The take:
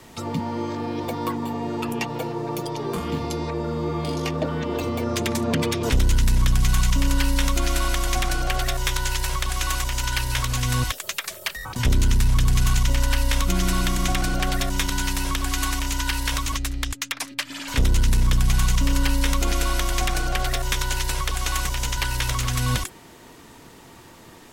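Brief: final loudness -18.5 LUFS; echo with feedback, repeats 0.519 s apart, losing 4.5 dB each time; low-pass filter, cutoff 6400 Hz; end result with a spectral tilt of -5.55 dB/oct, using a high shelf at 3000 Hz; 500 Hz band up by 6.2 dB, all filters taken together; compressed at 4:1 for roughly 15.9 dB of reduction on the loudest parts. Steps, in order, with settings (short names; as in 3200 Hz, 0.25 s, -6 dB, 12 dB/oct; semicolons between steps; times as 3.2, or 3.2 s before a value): LPF 6400 Hz; bell 500 Hz +8 dB; high shelf 3000 Hz -6 dB; compressor 4:1, threshold -35 dBFS; feedback echo 0.519 s, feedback 60%, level -4.5 dB; gain +17 dB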